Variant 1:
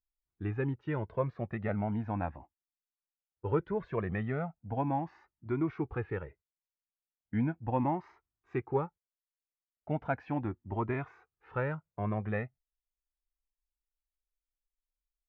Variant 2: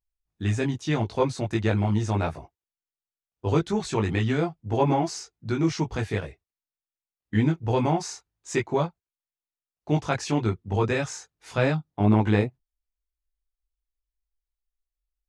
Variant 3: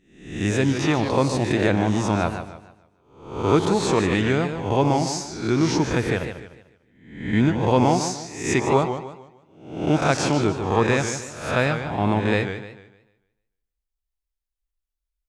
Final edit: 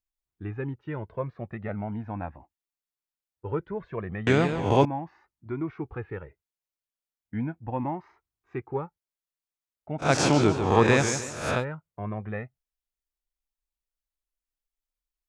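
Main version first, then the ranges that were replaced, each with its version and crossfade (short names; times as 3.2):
1
4.27–4.85 from 3
10.06–11.57 from 3, crossfade 0.16 s
not used: 2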